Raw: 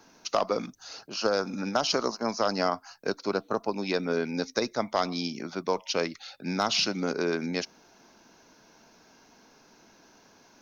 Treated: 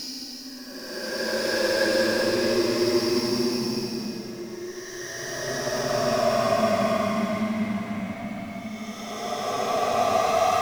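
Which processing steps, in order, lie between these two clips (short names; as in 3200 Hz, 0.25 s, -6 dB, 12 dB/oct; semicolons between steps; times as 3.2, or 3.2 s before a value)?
moving spectral ripple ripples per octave 1.3, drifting +1.1 Hz, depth 15 dB; power-law curve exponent 0.5; Paulstretch 22×, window 0.10 s, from 4.5; gain -6 dB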